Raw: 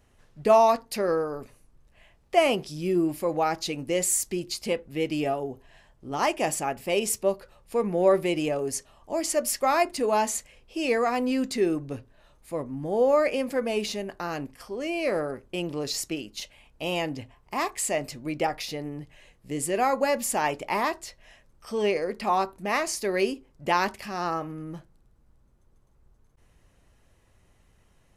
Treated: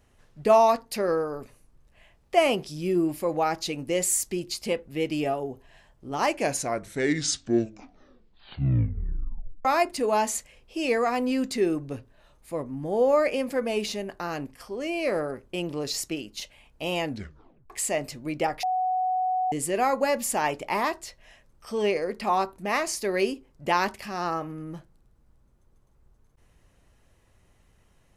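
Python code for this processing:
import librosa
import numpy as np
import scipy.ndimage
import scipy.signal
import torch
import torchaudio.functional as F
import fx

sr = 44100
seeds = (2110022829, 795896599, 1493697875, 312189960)

y = fx.edit(x, sr, fx.tape_stop(start_s=6.16, length_s=3.49),
    fx.tape_stop(start_s=17.06, length_s=0.64),
    fx.bleep(start_s=18.63, length_s=0.89, hz=742.0, db=-22.5), tone=tone)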